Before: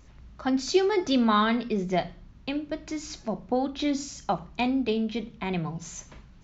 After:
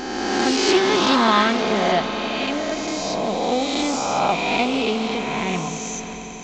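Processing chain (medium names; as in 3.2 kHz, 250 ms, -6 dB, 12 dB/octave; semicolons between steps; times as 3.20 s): reverse spectral sustain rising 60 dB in 2.19 s; bass shelf 370 Hz -6 dB; on a send: echo with a slow build-up 90 ms, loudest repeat 5, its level -17 dB; on the sum: loudspeaker Doppler distortion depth 0.13 ms; trim +4.5 dB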